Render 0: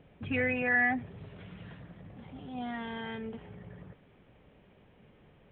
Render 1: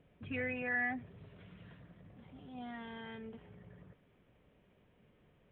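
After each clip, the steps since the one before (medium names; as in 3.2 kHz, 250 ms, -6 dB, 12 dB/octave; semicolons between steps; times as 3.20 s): band-stop 820 Hz, Q 12; trim -8 dB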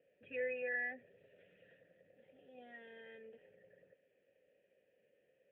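vowel filter e; trim +5 dB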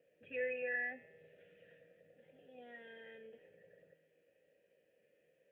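feedback comb 160 Hz, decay 1.2 s, mix 80%; trim +13.5 dB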